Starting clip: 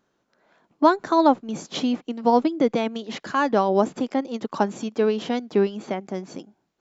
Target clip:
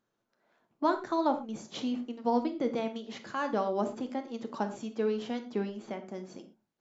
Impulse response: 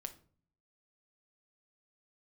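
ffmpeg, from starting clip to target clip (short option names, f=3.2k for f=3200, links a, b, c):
-filter_complex "[1:a]atrim=start_sample=2205,atrim=end_sample=3969,asetrate=29106,aresample=44100[a];[0:a][a]afir=irnorm=-1:irlink=0,volume=-9dB"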